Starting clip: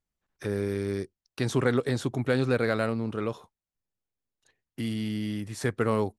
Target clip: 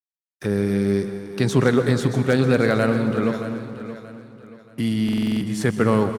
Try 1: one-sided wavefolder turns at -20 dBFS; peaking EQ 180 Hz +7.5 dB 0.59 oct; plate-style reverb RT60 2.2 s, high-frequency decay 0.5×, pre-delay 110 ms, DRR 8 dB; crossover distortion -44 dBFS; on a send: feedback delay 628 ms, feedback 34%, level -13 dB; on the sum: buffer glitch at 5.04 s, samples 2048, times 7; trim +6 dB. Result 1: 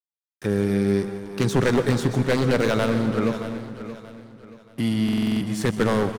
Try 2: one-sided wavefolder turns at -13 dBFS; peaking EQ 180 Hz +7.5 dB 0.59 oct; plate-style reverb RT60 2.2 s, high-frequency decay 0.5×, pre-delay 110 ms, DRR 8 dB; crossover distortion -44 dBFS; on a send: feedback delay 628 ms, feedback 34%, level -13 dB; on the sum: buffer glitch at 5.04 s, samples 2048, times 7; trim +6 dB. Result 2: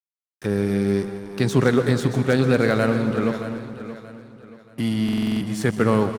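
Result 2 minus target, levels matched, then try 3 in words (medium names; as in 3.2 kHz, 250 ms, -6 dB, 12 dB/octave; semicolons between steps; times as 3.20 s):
crossover distortion: distortion +9 dB
one-sided wavefolder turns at -13 dBFS; peaking EQ 180 Hz +7.5 dB 0.59 oct; plate-style reverb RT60 2.2 s, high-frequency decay 0.5×, pre-delay 110 ms, DRR 8 dB; crossover distortion -54 dBFS; on a send: feedback delay 628 ms, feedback 34%, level -13 dB; on the sum: buffer glitch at 5.04 s, samples 2048, times 7; trim +6 dB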